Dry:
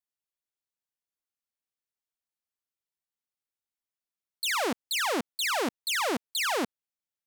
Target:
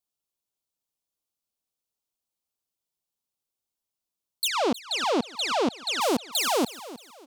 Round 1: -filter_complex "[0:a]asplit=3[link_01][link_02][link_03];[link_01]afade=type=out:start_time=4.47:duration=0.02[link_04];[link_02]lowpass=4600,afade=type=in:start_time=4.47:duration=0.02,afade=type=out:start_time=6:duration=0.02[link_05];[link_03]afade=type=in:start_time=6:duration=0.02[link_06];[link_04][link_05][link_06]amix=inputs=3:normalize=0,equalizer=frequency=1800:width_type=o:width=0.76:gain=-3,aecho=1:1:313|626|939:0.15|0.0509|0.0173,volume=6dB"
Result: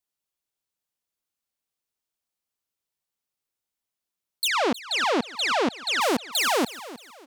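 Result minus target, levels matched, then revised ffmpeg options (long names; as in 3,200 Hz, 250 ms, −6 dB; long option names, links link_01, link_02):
2,000 Hz band +4.5 dB
-filter_complex "[0:a]asplit=3[link_01][link_02][link_03];[link_01]afade=type=out:start_time=4.47:duration=0.02[link_04];[link_02]lowpass=4600,afade=type=in:start_time=4.47:duration=0.02,afade=type=out:start_time=6:duration=0.02[link_05];[link_03]afade=type=in:start_time=6:duration=0.02[link_06];[link_04][link_05][link_06]amix=inputs=3:normalize=0,equalizer=frequency=1800:width_type=o:width=0.76:gain=-13.5,aecho=1:1:313|626|939:0.15|0.0509|0.0173,volume=6dB"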